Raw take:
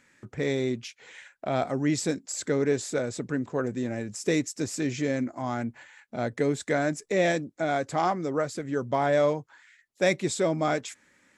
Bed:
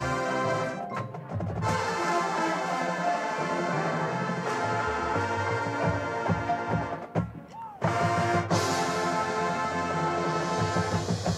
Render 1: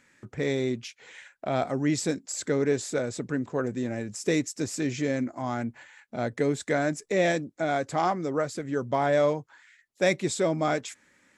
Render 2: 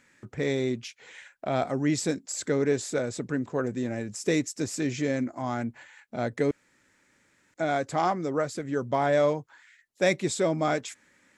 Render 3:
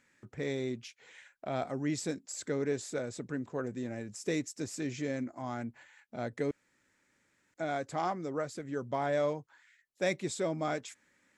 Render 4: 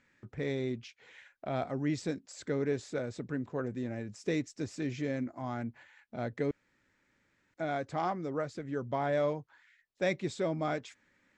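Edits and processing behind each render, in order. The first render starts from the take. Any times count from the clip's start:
no audible change
6.51–7.54 s: room tone
trim -7.5 dB
low-pass 4.8 kHz 12 dB/octave; bass shelf 100 Hz +8 dB

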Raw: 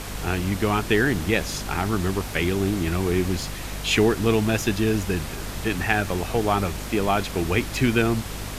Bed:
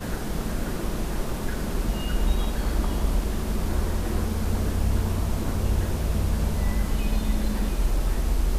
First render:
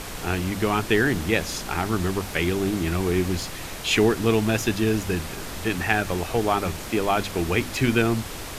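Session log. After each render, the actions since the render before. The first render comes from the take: hum notches 50/100/150/200/250 Hz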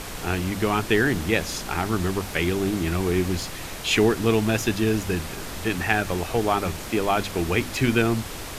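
no audible change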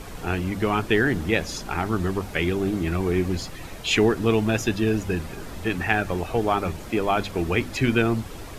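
noise reduction 9 dB, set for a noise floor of -35 dBFS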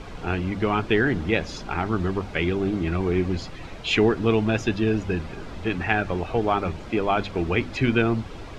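low-pass 4.4 kHz 12 dB/octave; band-stop 1.8 kHz, Q 23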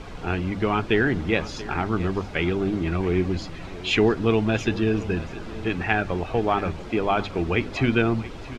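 delay 679 ms -16.5 dB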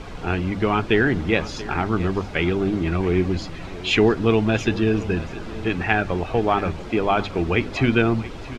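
trim +2.5 dB

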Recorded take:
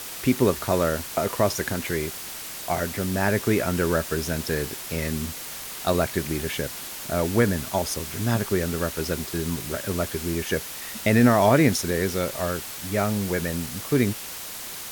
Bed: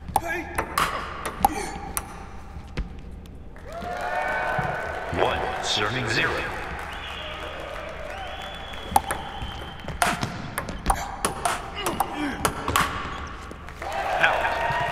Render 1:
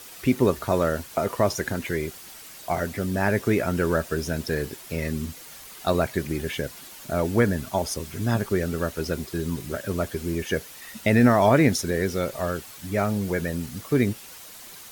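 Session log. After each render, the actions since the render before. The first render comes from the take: noise reduction 9 dB, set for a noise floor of -36 dBFS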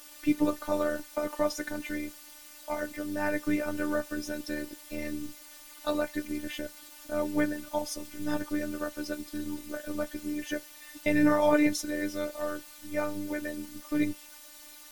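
flange 0.67 Hz, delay 5.2 ms, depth 4.6 ms, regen -53%; robot voice 297 Hz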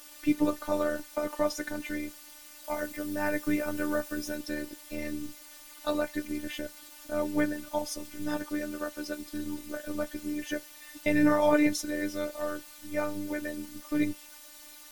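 2.64–4.36 s: treble shelf 10 kHz +6 dB; 8.28–9.22 s: bass shelf 160 Hz -7 dB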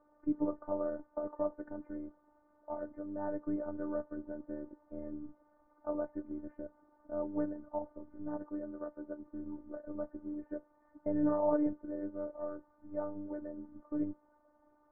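Bessel low-pass 660 Hz, order 8; bass shelf 480 Hz -9 dB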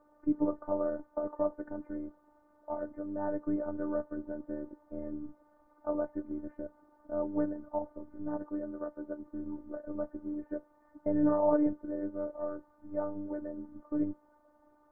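trim +3.5 dB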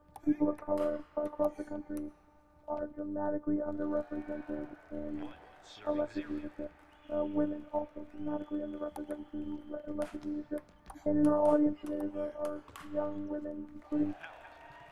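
add bed -28.5 dB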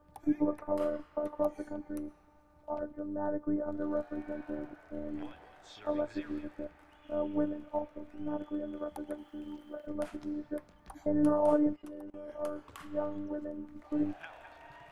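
9.18–9.87 s: tilt EQ +2 dB/octave; 11.76–12.29 s: level held to a coarse grid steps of 22 dB

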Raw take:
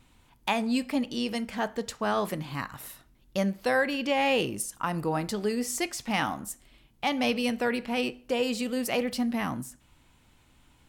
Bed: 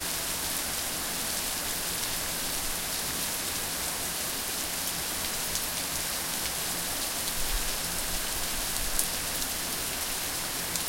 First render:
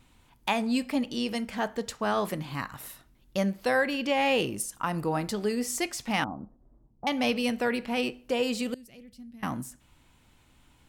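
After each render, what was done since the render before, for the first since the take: 6.24–7.07 s: Gaussian low-pass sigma 10 samples; 8.74–9.43 s: amplifier tone stack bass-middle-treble 10-0-1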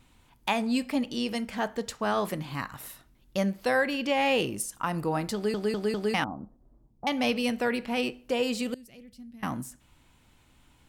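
5.34 s: stutter in place 0.20 s, 4 plays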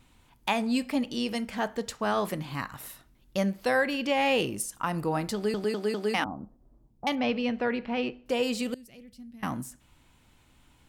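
5.64–6.26 s: high-pass 200 Hz 24 dB/octave; 7.15–8.26 s: distance through air 220 m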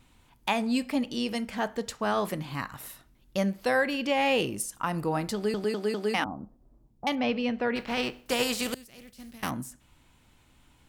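7.75–9.49 s: spectral contrast reduction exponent 0.62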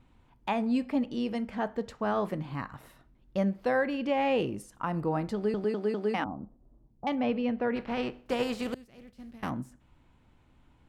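low-pass 1.1 kHz 6 dB/octave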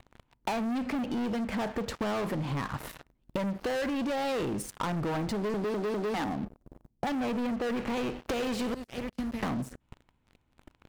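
waveshaping leveller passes 5; compression 12:1, threshold -30 dBFS, peak gain reduction 12 dB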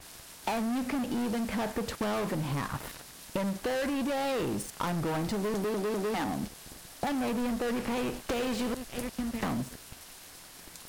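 add bed -17.5 dB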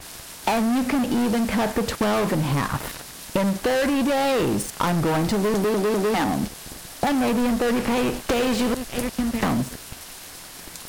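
trim +9.5 dB

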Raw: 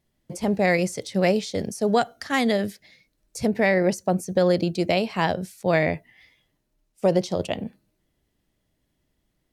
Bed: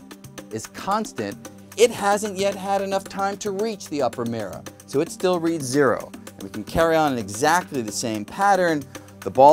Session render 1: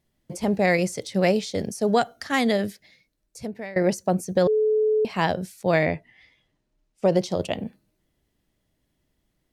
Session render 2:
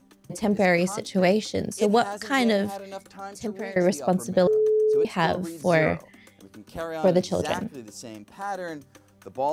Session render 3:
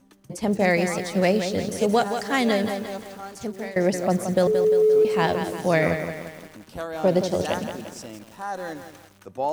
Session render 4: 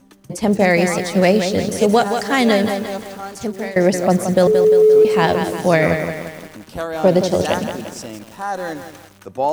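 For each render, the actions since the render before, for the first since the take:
2.61–3.76 s: fade out, to -20.5 dB; 4.47–5.05 s: bleep 431 Hz -17.5 dBFS; 5.85–7.12 s: distance through air 52 m
add bed -14 dB
bit-crushed delay 174 ms, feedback 55%, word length 7-bit, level -8 dB
trim +7 dB; peak limiter -3 dBFS, peak gain reduction 3 dB

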